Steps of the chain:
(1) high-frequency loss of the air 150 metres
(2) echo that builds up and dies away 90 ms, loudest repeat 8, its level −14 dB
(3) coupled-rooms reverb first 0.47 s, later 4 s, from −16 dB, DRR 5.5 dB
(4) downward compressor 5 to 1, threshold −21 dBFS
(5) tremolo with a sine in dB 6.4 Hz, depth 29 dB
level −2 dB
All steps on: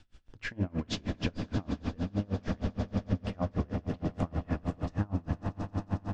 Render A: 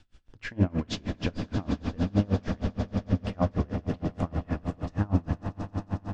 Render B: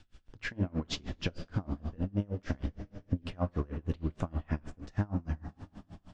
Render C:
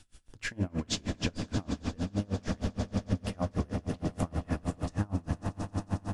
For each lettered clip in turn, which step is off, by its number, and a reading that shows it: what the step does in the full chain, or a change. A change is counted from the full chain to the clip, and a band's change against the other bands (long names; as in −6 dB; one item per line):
4, average gain reduction 3.0 dB
2, change in momentary loudness spread +4 LU
1, 4 kHz band +3.5 dB